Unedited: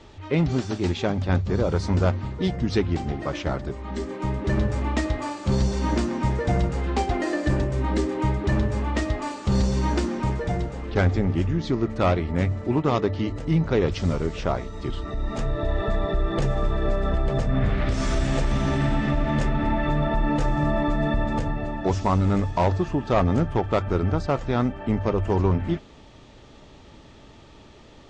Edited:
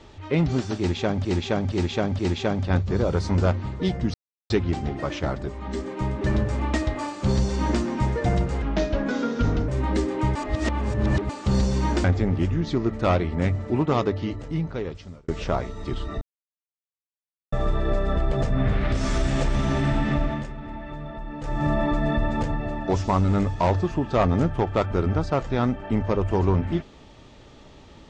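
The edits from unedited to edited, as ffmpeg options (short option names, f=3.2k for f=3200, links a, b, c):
-filter_complex "[0:a]asplit=15[a][b][c][d][e][f][g][h][i][j][k][l][m][n][o];[a]atrim=end=1.252[p];[b]atrim=start=0.778:end=1.252[q];[c]atrim=start=0.778:end=1.252[r];[d]atrim=start=0.778:end=2.73,asetpts=PTS-STARTPTS,afade=t=out:st=1.948:d=0.004:c=hsin,apad=pad_dur=0.36[s];[e]atrim=start=2.73:end=6.854,asetpts=PTS-STARTPTS,afade=t=in:d=0.004:c=hsin[t];[f]atrim=start=6.85:end=7.69,asetpts=PTS-STARTPTS,asetrate=34839,aresample=44100,atrim=end_sample=46891,asetpts=PTS-STARTPTS[u];[g]atrim=start=7.686:end=8.362[v];[h]atrim=start=8.358:end=9.302,asetpts=PTS-STARTPTS,areverse[w];[i]atrim=start=9.298:end=10.052[x];[j]atrim=start=11.008:end=14.25,asetpts=PTS-STARTPTS,afade=t=out:st=1.942:d=1.3[y];[k]atrim=start=14.25:end=15.18,asetpts=PTS-STARTPTS,afade=t=in:d=0.004:c=hsin,afade=t=out:st=0.926:d=0.004:c=hsin[z];[l]atrim=start=15.18:end=16.49,asetpts=PTS-STARTPTS,volume=0[aa];[m]atrim=start=16.49:end=19.43,asetpts=PTS-STARTPTS,afade=t=in:d=0.004:c=hsin,afade=t=out:st=2.69:d=0.25:silence=0.237137[ab];[n]atrim=start=19.43:end=20.37,asetpts=PTS-STARTPTS,volume=-12.5dB[ac];[o]atrim=start=20.37,asetpts=PTS-STARTPTS,afade=t=in:d=0.25:silence=0.237137[ad];[p][q]acrossfade=d=0.004:c1=hsin:c2=hsin[ae];[ae][r]acrossfade=d=0.004:c1=hsin:c2=hsin[af];[s][t]concat=n=2:v=0:a=1[ag];[af][ag]acrossfade=d=0.004:c1=hsin:c2=hsin[ah];[ah][u]acrossfade=d=0.004:c1=hsin:c2=hsin[ai];[ai][v]acrossfade=d=0.004:c1=hsin:c2=hsin[aj];[aj][w]acrossfade=d=0.004:c1=hsin:c2=hsin[ak];[ak][x]acrossfade=d=0.004:c1=hsin:c2=hsin[al];[y][z][aa][ab][ac][ad]concat=n=6:v=0:a=1[am];[al][am]acrossfade=d=0.004:c1=hsin:c2=hsin"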